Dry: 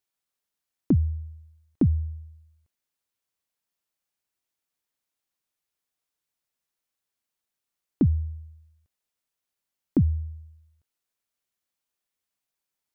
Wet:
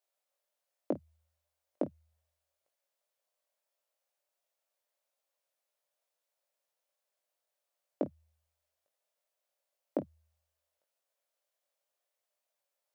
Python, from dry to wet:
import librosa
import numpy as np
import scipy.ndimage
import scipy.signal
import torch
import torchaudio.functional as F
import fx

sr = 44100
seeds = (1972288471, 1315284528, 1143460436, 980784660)

y = fx.highpass_res(x, sr, hz=580.0, q=5.8)
y = fx.room_early_taps(y, sr, ms=(20, 51), db=(-5.5, -17.5))
y = y * librosa.db_to_amplitude(-3.5)